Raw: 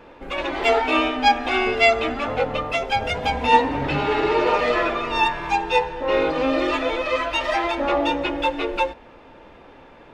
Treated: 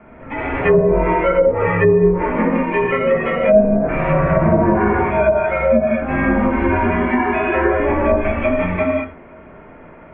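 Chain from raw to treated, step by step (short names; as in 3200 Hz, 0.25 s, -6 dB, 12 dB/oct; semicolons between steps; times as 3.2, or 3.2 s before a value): non-linear reverb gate 0.24 s flat, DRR -4.5 dB; mistuned SSB -270 Hz 310–2600 Hz; treble ducked by the level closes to 480 Hz, closed at -8.5 dBFS; gain +1.5 dB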